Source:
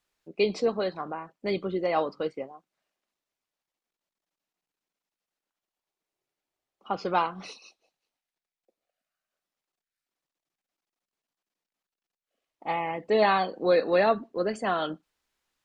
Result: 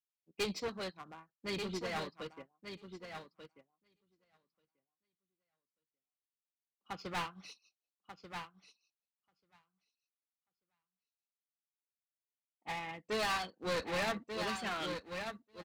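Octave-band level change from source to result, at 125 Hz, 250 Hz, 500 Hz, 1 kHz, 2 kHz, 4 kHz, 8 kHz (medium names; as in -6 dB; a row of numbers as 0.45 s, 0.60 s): -6.5 dB, -10.5 dB, -14.5 dB, -12.0 dB, -6.0 dB, -2.5 dB, +4.0 dB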